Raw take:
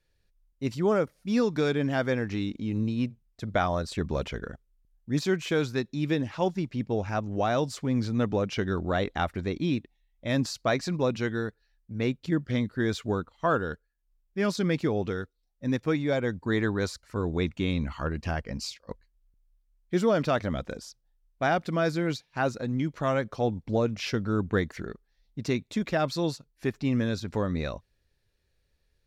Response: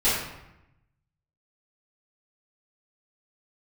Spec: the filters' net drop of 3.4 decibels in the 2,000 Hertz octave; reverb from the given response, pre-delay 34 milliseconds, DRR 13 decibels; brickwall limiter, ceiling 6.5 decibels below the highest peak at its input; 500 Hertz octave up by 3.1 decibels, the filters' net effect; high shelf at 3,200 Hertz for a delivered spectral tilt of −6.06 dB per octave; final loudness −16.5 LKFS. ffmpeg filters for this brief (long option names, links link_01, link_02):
-filter_complex "[0:a]equalizer=frequency=500:width_type=o:gain=4,equalizer=frequency=2000:width_type=o:gain=-6,highshelf=frequency=3200:gain=3,alimiter=limit=-18dB:level=0:latency=1,asplit=2[link_01][link_02];[1:a]atrim=start_sample=2205,adelay=34[link_03];[link_02][link_03]afir=irnorm=-1:irlink=0,volume=-28dB[link_04];[link_01][link_04]amix=inputs=2:normalize=0,volume=13dB"